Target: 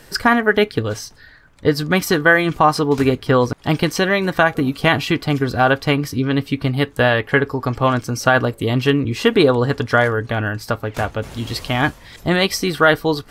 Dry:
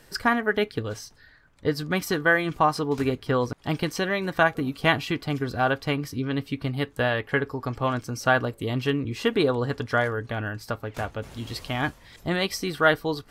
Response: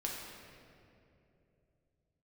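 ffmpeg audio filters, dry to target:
-af "alimiter=level_in=10dB:limit=-1dB:release=50:level=0:latency=1,volume=-1dB"

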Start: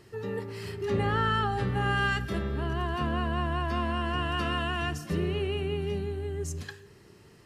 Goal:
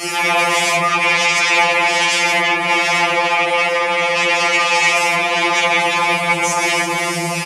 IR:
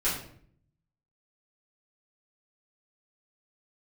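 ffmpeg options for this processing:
-filter_complex "[0:a]asplit=2[link_01][link_02];[link_02]alimiter=level_in=1dB:limit=-24dB:level=0:latency=1,volume=-1dB,volume=1dB[link_03];[link_01][link_03]amix=inputs=2:normalize=0,acrossover=split=3700[link_04][link_05];[link_05]acompressor=threshold=-50dB:ratio=4:attack=1:release=60[link_06];[link_04][link_06]amix=inputs=2:normalize=0,aemphasis=mode=production:type=75fm,asplit=2[link_07][link_08];[link_08]adelay=336,lowpass=frequency=2000:poles=1,volume=-6dB,asplit=2[link_09][link_10];[link_10]adelay=336,lowpass=frequency=2000:poles=1,volume=0.47,asplit=2[link_11][link_12];[link_12]adelay=336,lowpass=frequency=2000:poles=1,volume=0.47,asplit=2[link_13][link_14];[link_14]adelay=336,lowpass=frequency=2000:poles=1,volume=0.47,asplit=2[link_15][link_16];[link_16]adelay=336,lowpass=frequency=2000:poles=1,volume=0.47,asplit=2[link_17][link_18];[link_18]adelay=336,lowpass=frequency=2000:poles=1,volume=0.47[link_19];[link_07][link_09][link_11][link_13][link_15][link_17][link_19]amix=inputs=7:normalize=0[link_20];[1:a]atrim=start_sample=2205[link_21];[link_20][link_21]afir=irnorm=-1:irlink=0,areverse,acompressor=threshold=-21dB:ratio=16,areverse,aeval=exprs='0.188*sin(PI/2*5.62*val(0)/0.188)':channel_layout=same,highpass=300,equalizer=frequency=310:width_type=q:width=4:gain=-6,equalizer=frequency=830:width_type=q:width=4:gain=4,equalizer=frequency=1500:width_type=q:width=4:gain=-10,equalizer=frequency=2300:width_type=q:width=4:gain=10,equalizer=frequency=4100:width_type=q:width=4:gain=-8,equalizer=frequency=8200:width_type=q:width=4:gain=-3,lowpass=frequency=9800:width=0.5412,lowpass=frequency=9800:width=1.3066,afftfilt=real='re*2.83*eq(mod(b,8),0)':imag='im*2.83*eq(mod(b,8),0)':win_size=2048:overlap=0.75,volume=4.5dB"

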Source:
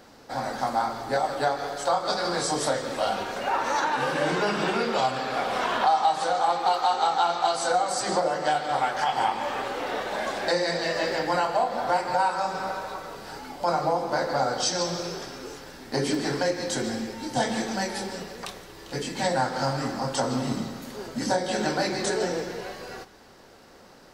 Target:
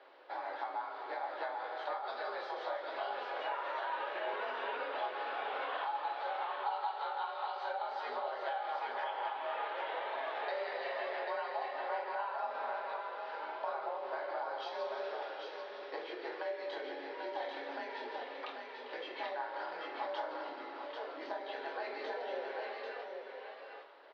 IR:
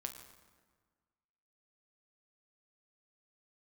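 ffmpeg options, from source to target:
-filter_complex "[0:a]acompressor=threshold=-30dB:ratio=6,aecho=1:1:791:0.596[link_01];[1:a]atrim=start_sample=2205,atrim=end_sample=4410[link_02];[link_01][link_02]afir=irnorm=-1:irlink=0,highpass=frequency=350:width_type=q:width=0.5412,highpass=frequency=350:width_type=q:width=1.307,lowpass=frequency=3600:width_type=q:width=0.5176,lowpass=frequency=3600:width_type=q:width=0.7071,lowpass=frequency=3600:width_type=q:width=1.932,afreqshift=53,volume=-3.5dB"

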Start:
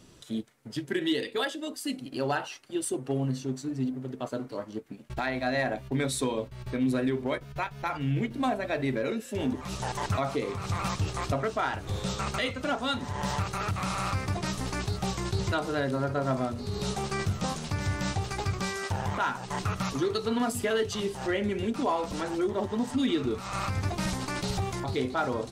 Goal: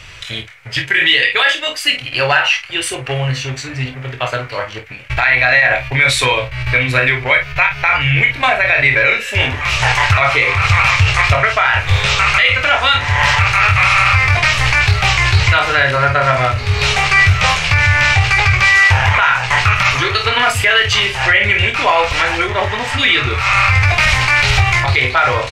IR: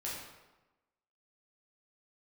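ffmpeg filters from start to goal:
-filter_complex "[0:a]firequalizer=gain_entry='entry(100,0);entry(220,-27);entry(490,-9);entry(2300,13);entry(3500,0);entry(9200,-12)':delay=0.05:min_phase=1,asplit=2[link_01][link_02];[link_02]aecho=0:1:24|50:0.473|0.299[link_03];[link_01][link_03]amix=inputs=2:normalize=0,alimiter=level_in=21.5dB:limit=-1dB:release=50:level=0:latency=1,volume=-1dB"

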